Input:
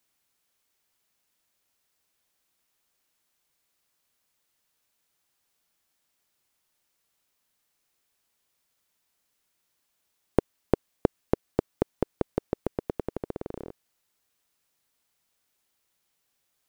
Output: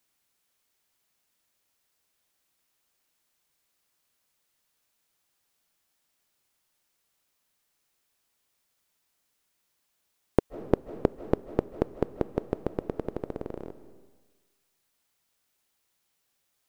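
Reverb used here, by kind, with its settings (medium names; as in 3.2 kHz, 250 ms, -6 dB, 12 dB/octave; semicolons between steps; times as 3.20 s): algorithmic reverb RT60 1.3 s, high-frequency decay 1×, pre-delay 115 ms, DRR 13 dB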